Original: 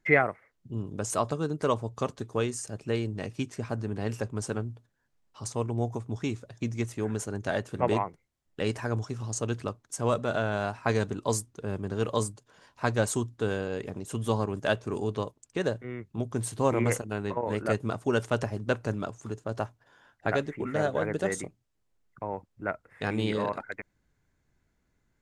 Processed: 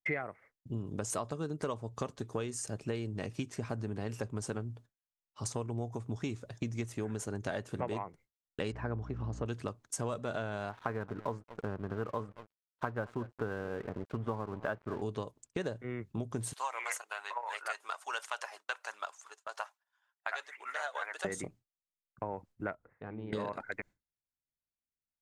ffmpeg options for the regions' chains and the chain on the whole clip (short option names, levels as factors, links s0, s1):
-filter_complex "[0:a]asettb=1/sr,asplit=3[s0][s1][s2];[s0]atrim=end=8.724[s3];[s1]atrim=start=8.72:end=9.46,asetpts=PTS-STARTPTS,afade=t=in:d=0.004:c=qsin,afade=t=out:st=0.736:d=0.004:c=qsin,lowpass=2000,aeval=exprs='val(0)+0.00891*(sin(2*PI*60*n/s)+sin(2*PI*2*60*n/s)/2+sin(2*PI*3*60*n/s)/3+sin(2*PI*4*60*n/s)/4+sin(2*PI*5*60*n/s)/5)':c=same[s4];[s2]atrim=start=9.456[s5];[s3][s4]acrossfade=d=0.004:c1=hsin:c2=qsin[s6];[s6][s5]acrossfade=d=0.004:c1=qsin:c2=hsin,asettb=1/sr,asplit=3[s7][s8][s9];[s7]atrim=end=10.694[s10];[s8]atrim=start=10.69:end=15.02,asetpts=PTS-STARTPTS,afade=t=in:d=0.004:c=qsin,afade=t=out:st=4.326:d=0.004:c=qsin,lowpass=f=1400:t=q:w=1.8,aecho=1:1:224:0.1,atrim=end_sample=190953,aeval=exprs='sgn(val(0))*max(abs(val(0))-0.00473,0)':c=same[s11];[s9]atrim=start=15.016[s12];[s10][s11]acrossfade=d=0.004:c1=hsin:c2=qsin[s13];[s13][s12]acrossfade=d=0.004:c1=qsin:c2=hsin,asettb=1/sr,asplit=3[s14][s15][s16];[s14]atrim=end=16.534[s17];[s15]atrim=start=16.53:end=21.25,asetpts=PTS-STARTPTS,afade=t=in:d=0.004:c=qsin,afade=t=out:st=4.716:d=0.004:c=qsin,highpass=f=850:w=0.5412,highpass=f=850:w=1.3066,aphaser=in_gain=1:out_gain=1:delay=3.3:decay=0.31:speed=1.2:type=triangular[s18];[s16]atrim=start=21.246[s19];[s17][s18]acrossfade=d=0.004:c1=hsin:c2=qsin[s20];[s20][s19]acrossfade=d=0.004:c1=qsin:c2=hsin,asettb=1/sr,asplit=3[s21][s22][s23];[s21]atrim=end=22.744[s24];[s22]atrim=start=22.74:end=23.33,asetpts=PTS-STARTPTS,afade=t=in:d=0.004:c=qsin,afade=t=out:st=0.586:d=0.004:c=qsin,lowpass=1300,acompressor=threshold=0.00251:ratio=2:attack=3.2:release=140:knee=1:detection=peak[s25];[s23]atrim=start=23.326[s26];[s24][s25]acrossfade=d=0.004:c1=hsin:c2=qsin[s27];[s27][s26]acrossfade=d=0.004:c1=qsin:c2=hsin,agate=range=0.0224:threshold=0.00447:ratio=3:detection=peak,acompressor=threshold=0.02:ratio=6,volume=1.12"